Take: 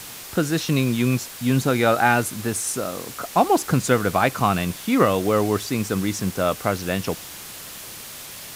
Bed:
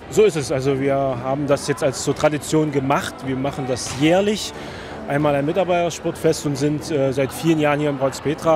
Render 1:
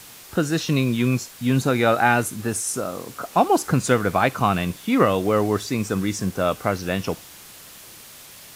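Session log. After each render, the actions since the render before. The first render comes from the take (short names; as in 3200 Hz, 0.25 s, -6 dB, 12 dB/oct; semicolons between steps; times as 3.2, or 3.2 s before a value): noise print and reduce 6 dB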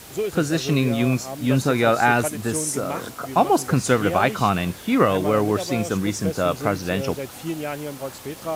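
add bed -11.5 dB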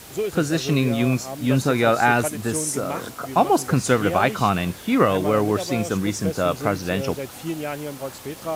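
nothing audible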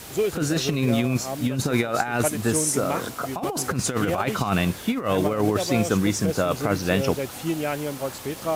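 negative-ratio compressor -21 dBFS, ratio -0.5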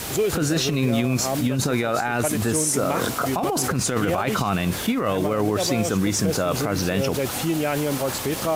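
in parallel at -1.5 dB: negative-ratio compressor -32 dBFS, ratio -1; on the sum: limiter -11.5 dBFS, peak gain reduction 5.5 dB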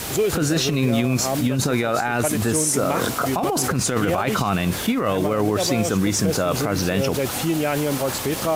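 gain +1.5 dB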